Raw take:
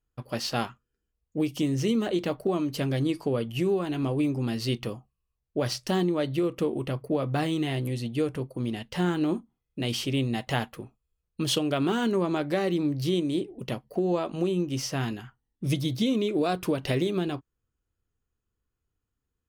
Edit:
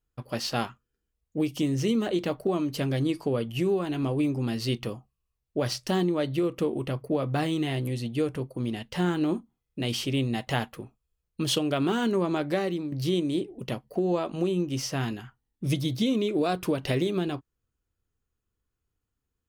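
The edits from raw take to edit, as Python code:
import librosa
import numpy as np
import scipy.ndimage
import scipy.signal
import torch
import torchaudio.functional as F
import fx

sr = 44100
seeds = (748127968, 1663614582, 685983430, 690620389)

y = fx.edit(x, sr, fx.fade_out_to(start_s=12.55, length_s=0.37, floor_db=-9.5), tone=tone)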